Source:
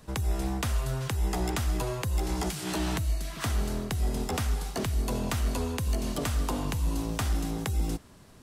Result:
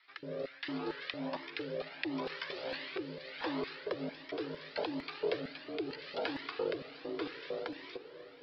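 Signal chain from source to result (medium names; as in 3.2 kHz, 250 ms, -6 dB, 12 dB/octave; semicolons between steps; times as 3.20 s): steep low-pass 4.9 kHz 96 dB/octave; ring modulator 210 Hz; LFO high-pass square 2.2 Hz 440–1900 Hz; rotary cabinet horn 0.75 Hz; on a send: echo that smears into a reverb 565 ms, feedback 55%, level -14 dB; on the sum: Shepard-style flanger rising 1.4 Hz; trim +4 dB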